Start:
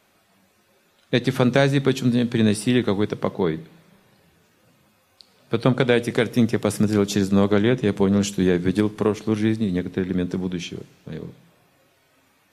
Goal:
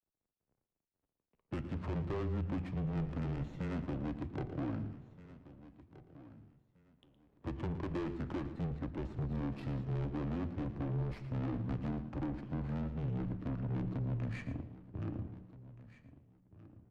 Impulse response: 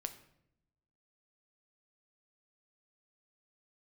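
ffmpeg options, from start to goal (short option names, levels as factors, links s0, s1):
-filter_complex "[0:a]highshelf=f=3100:g=7,acompressor=threshold=0.0708:ratio=4,aeval=exprs='(tanh(28.2*val(0)+0.1)-tanh(0.1))/28.2':c=same,aeval=exprs='val(0)*gte(abs(val(0)),0.00335)':c=same,adynamicsmooth=sensitivity=3.5:basefreq=700,flanger=delay=6.5:depth=5.1:regen=-86:speed=0.62:shape=sinusoidal,afreqshift=-20,aecho=1:1:1166|2332:0.133|0.032,asplit=2[s0][s1];[1:a]atrim=start_sample=2205,adelay=85[s2];[s1][s2]afir=irnorm=-1:irlink=0,volume=0.282[s3];[s0][s3]amix=inputs=2:normalize=0,asetrate=32667,aresample=44100,volume=1.12"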